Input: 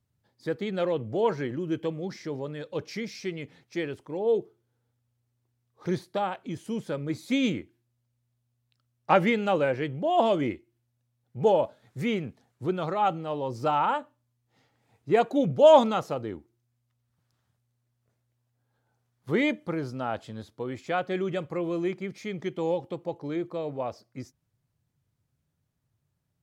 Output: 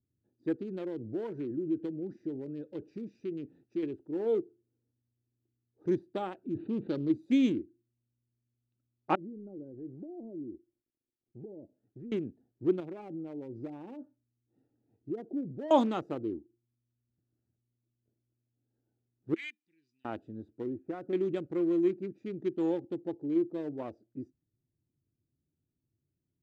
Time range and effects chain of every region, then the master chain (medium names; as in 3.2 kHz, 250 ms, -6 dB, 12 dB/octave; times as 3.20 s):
0.58–3.83 s: compression 2.5:1, threshold -31 dBFS + tape noise reduction on one side only encoder only
6.55–7.12 s: sorted samples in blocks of 8 samples + brick-wall FIR low-pass 4.6 kHz + level flattener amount 50%
9.15–12.12 s: companding laws mixed up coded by A + low-pass that closes with the level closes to 390 Hz, closed at -23.5 dBFS + compression, threshold -38 dBFS
12.80–15.71 s: low-pass that closes with the level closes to 610 Hz, closed at -22 dBFS + compression 2.5:1, threshold -35 dBFS
19.34–20.05 s: elliptic high-pass 2.1 kHz + upward compressor, threshold -55 dBFS
20.67–21.13 s: low-pass 1.5 kHz 24 dB/octave + compression, threshold -28 dBFS
whole clip: local Wiener filter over 41 samples; FFT filter 170 Hz 0 dB, 330 Hz +13 dB, 500 Hz 0 dB; trim -7.5 dB